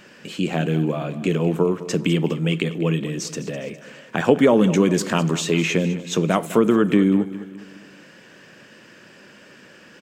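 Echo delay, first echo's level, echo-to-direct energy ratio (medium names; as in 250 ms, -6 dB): 205 ms, -15.0 dB, -14.0 dB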